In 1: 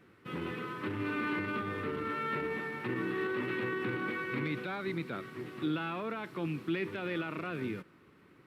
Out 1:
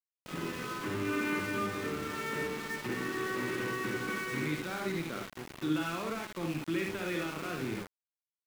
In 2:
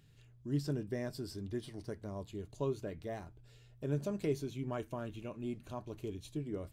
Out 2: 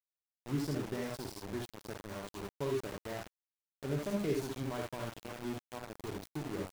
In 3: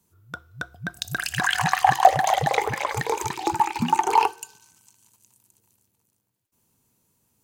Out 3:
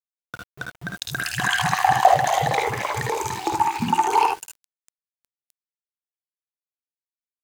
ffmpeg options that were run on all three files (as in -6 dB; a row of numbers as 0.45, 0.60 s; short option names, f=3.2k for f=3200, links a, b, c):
-af "aecho=1:1:53|68|78:0.501|0.447|0.473,aeval=exprs='val(0)*gte(abs(val(0)),0.0126)':c=same,volume=-1dB"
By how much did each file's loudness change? +1.0, +0.5, +1.0 LU